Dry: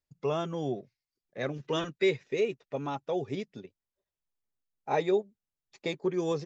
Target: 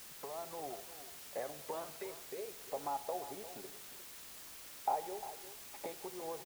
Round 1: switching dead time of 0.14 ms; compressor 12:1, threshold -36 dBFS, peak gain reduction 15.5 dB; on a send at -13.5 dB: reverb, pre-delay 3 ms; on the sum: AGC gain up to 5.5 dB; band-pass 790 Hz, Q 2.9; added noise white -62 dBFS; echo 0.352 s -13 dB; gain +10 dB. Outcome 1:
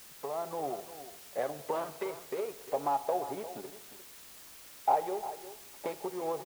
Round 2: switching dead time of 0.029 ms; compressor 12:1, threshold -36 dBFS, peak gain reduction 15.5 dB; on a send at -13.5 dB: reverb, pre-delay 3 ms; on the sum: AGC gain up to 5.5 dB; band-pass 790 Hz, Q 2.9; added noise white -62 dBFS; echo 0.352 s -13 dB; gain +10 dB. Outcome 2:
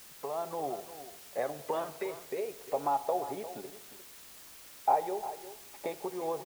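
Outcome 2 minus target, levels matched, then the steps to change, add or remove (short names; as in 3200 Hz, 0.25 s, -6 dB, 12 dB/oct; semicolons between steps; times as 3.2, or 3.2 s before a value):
compressor: peak gain reduction -9 dB
change: compressor 12:1, threshold -46 dBFS, peak gain reduction 25 dB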